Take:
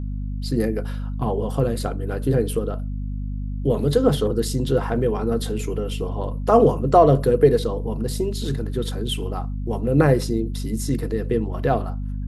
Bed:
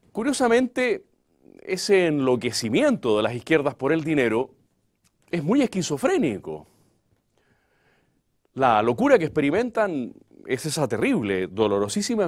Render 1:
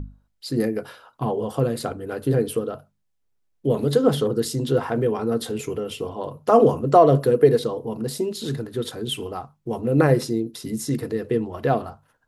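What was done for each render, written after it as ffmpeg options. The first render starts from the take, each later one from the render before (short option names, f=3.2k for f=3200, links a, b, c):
-af "bandreject=f=50:t=h:w=6,bandreject=f=100:t=h:w=6,bandreject=f=150:t=h:w=6,bandreject=f=200:t=h:w=6,bandreject=f=250:t=h:w=6"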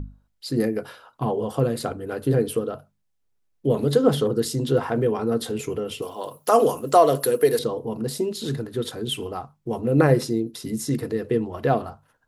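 -filter_complex "[0:a]asettb=1/sr,asplit=3[a][b][c];[a]atrim=end=6.024[d];[b]atrim=start=6.02:end=7.59,asetpts=PTS-STARTPTS,afade=t=in:d=0.004:c=qsin,afade=t=out:st=1.566:d=0.004:c=qsin,aemphasis=mode=production:type=riaa[e];[c]atrim=start=7.586[f];[d][e]acrossfade=d=0.004:c1=hsin:c2=qsin[g];[g][f]acrossfade=d=0.004:c1=qsin:c2=hsin"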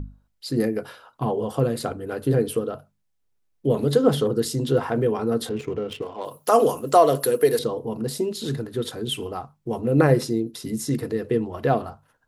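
-filter_complex "[0:a]asettb=1/sr,asplit=3[a][b][c];[a]atrim=end=5.494[d];[b]atrim=start=5.49:end=6.25,asetpts=PTS-STARTPTS,afade=t=in:d=0.004:c=qsin,afade=t=out:st=0.756:d=0.004:c=qsin,adynamicsmooth=sensitivity=7:basefreq=1.4k[e];[c]atrim=start=6.246[f];[d][e]acrossfade=d=0.004:c1=hsin:c2=qsin[g];[g][f]acrossfade=d=0.004:c1=qsin:c2=hsin"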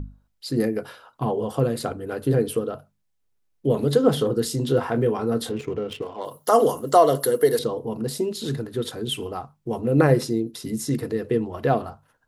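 -filter_complex "[0:a]asettb=1/sr,asplit=3[a][b][c];[a]atrim=end=4.104[d];[b]atrim=start=4.1:end=5.57,asetpts=PTS-STARTPTS,afade=t=in:d=0.004:c=qsin,afade=t=out:st=1.466:d=0.004:c=qsin,asplit=2[e][f];[f]adelay=25,volume=-11dB[g];[e][g]amix=inputs=2:normalize=0,atrim=end_sample=64827[h];[c]atrim=start=5.566[i];[d][h]acrossfade=d=0.004:c1=hsin:c2=qsin[j];[j][i]acrossfade=d=0.004:c1=qsin:c2=hsin,asettb=1/sr,asplit=3[k][l][m];[k]atrim=end=6.194[n];[l]atrim=start=6.19:end=7.56,asetpts=PTS-STARTPTS,afade=t=in:d=0.004:c=qsin,afade=t=out:st=1.366:d=0.004:c=qsin,asuperstop=centerf=2500:order=20:qfactor=5.5[o];[m]atrim=start=7.556[p];[n][o]acrossfade=d=0.004:c1=hsin:c2=qsin[q];[q][p]acrossfade=d=0.004:c1=qsin:c2=hsin"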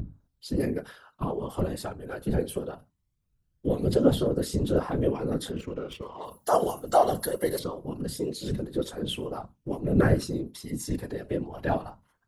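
-af "aphaser=in_gain=1:out_gain=1:delay=1.4:decay=0.37:speed=0.22:type=triangular,afftfilt=real='hypot(re,im)*cos(2*PI*random(0))':imag='hypot(re,im)*sin(2*PI*random(1))':win_size=512:overlap=0.75"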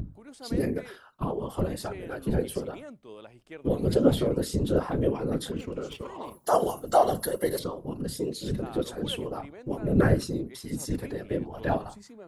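-filter_complex "[1:a]volume=-24.5dB[a];[0:a][a]amix=inputs=2:normalize=0"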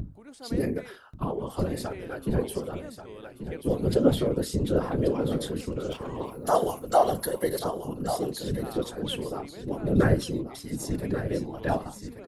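-af "aecho=1:1:1135:0.316"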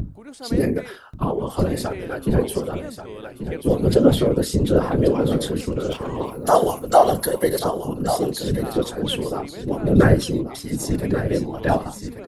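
-af "volume=7.5dB,alimiter=limit=-2dB:level=0:latency=1"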